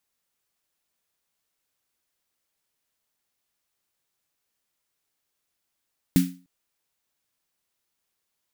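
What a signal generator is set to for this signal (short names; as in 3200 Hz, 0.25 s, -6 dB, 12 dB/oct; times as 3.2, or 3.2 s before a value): snare drum length 0.30 s, tones 180 Hz, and 270 Hz, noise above 1500 Hz, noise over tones -11.5 dB, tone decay 0.35 s, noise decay 0.31 s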